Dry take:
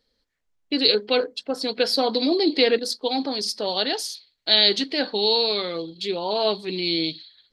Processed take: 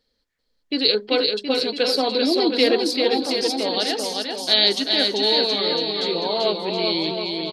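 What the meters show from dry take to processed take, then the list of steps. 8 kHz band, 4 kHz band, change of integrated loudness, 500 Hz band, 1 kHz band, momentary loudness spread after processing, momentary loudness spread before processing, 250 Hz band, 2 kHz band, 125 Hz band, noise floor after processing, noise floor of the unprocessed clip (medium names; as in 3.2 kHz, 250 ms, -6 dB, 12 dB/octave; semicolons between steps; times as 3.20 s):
+2.0 dB, +2.0 dB, +2.0 dB, +2.0 dB, +2.0 dB, 6 LU, 10 LU, +2.0 dB, +2.0 dB, no reading, -72 dBFS, -74 dBFS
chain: on a send: bouncing-ball echo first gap 390 ms, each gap 0.85×, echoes 5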